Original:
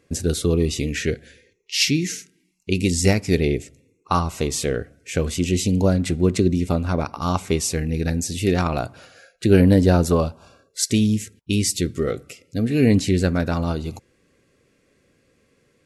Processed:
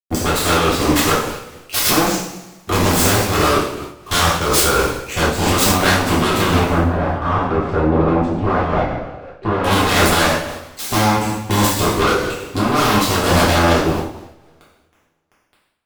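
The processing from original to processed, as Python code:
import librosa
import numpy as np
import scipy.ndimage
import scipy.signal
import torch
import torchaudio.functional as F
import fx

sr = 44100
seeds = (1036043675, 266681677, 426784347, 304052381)

y = fx.wiener(x, sr, points=25)
y = np.clip(y, -10.0 ** (-20.0 / 20.0), 10.0 ** (-20.0 / 20.0))
y = fx.highpass(y, sr, hz=140.0, slope=6)
y = fx.low_shelf(y, sr, hz=440.0, db=-9.5)
y = fx.quant_dither(y, sr, seeds[0], bits=10, dither='none')
y = fx.fold_sine(y, sr, drive_db=18, ceiling_db=-15.0)
y = fx.level_steps(y, sr, step_db=10)
y = fx.lowpass(y, sr, hz=1200.0, slope=12, at=(6.69, 9.64))
y = fx.rev_double_slope(y, sr, seeds[1], early_s=0.84, late_s=2.1, knee_db=-23, drr_db=-7.5)
y = fx.am_noise(y, sr, seeds[2], hz=5.7, depth_pct=55)
y = y * 10.0 ** (1.0 / 20.0)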